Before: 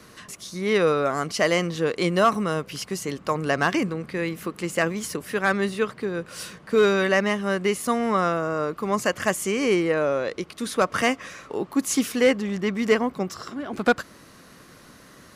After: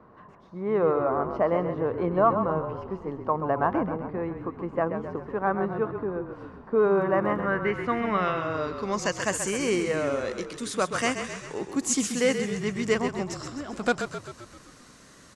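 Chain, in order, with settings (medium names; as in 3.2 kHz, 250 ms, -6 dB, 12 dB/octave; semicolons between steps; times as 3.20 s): low-pass sweep 930 Hz -> 7.9 kHz, 7.03–9.33 s; 6.94–7.46 s: crackle 25 per s -40 dBFS; frequency-shifting echo 131 ms, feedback 58%, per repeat -33 Hz, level -8 dB; trim -5 dB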